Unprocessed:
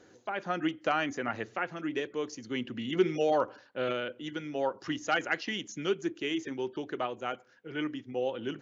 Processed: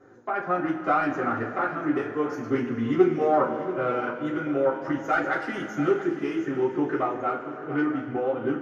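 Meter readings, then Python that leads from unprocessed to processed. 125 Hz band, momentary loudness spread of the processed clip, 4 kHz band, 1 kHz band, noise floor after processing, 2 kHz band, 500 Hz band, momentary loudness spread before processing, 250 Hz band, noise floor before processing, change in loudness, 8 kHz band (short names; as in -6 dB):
+8.0 dB, 7 LU, -9.0 dB, +8.0 dB, -37 dBFS, +4.5 dB, +6.5 dB, 8 LU, +8.5 dB, -60 dBFS, +7.0 dB, n/a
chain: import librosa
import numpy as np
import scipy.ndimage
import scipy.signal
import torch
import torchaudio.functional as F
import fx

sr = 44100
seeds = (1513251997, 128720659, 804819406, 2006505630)

p1 = fx.self_delay(x, sr, depth_ms=0.11)
p2 = fx.recorder_agc(p1, sr, target_db=-21.0, rise_db_per_s=12.0, max_gain_db=30)
p3 = fx.high_shelf_res(p2, sr, hz=2200.0, db=-13.5, q=1.5)
p4 = p3 + fx.echo_single(p3, sr, ms=686, db=-14.0, dry=0)
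p5 = fx.rev_double_slope(p4, sr, seeds[0], early_s=0.23, late_s=3.4, knee_db=-18, drr_db=-6.5)
y = p5 * librosa.db_to_amplitude(-2.5)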